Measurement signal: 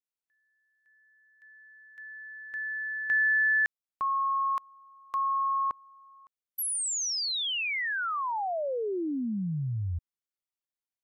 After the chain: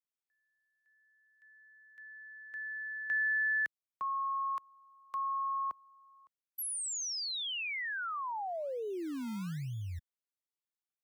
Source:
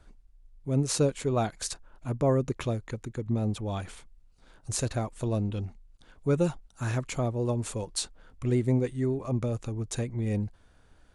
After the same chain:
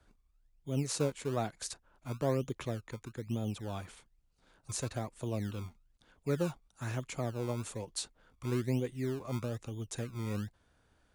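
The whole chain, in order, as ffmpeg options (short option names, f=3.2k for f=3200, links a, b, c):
-filter_complex "[0:a]highpass=f=64:p=1,acrossover=split=260|460|2400[a][b][c][d];[a]acrusher=samples=26:mix=1:aa=0.000001:lfo=1:lforange=26:lforate=1.1[e];[e][b][c][d]amix=inputs=4:normalize=0,volume=-6.5dB"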